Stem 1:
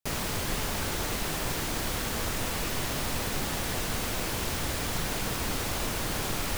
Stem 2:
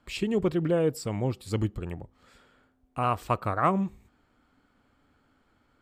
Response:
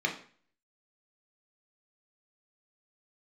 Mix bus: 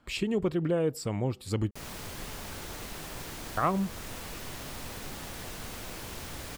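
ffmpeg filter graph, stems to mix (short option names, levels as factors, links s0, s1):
-filter_complex "[0:a]adelay=1700,volume=0.335[s0];[1:a]volume=1.26,asplit=3[s1][s2][s3];[s1]atrim=end=1.71,asetpts=PTS-STARTPTS,afade=t=out:st=1.706:d=0.004:c=hsin[s4];[s2]atrim=start=1.71:end=3.57,asetpts=PTS-STARTPTS,volume=0[s5];[s3]atrim=start=3.57,asetpts=PTS-STARTPTS,afade=t=in:d=0.004:c=hsin[s6];[s4][s5][s6]concat=n=3:v=0:a=1[s7];[s0][s7]amix=inputs=2:normalize=0,acompressor=threshold=0.0251:ratio=1.5"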